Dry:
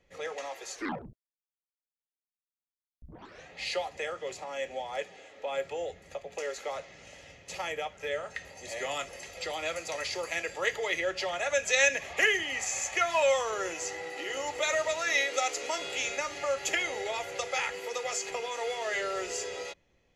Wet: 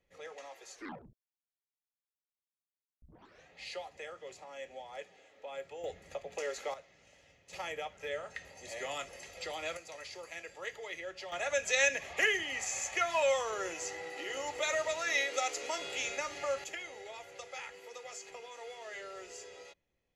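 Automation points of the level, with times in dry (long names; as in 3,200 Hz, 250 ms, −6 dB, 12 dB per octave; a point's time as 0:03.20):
−10 dB
from 0:05.84 −2 dB
from 0:06.74 −12.5 dB
from 0:07.53 −5 dB
from 0:09.77 −12 dB
from 0:11.32 −4 dB
from 0:16.64 −13 dB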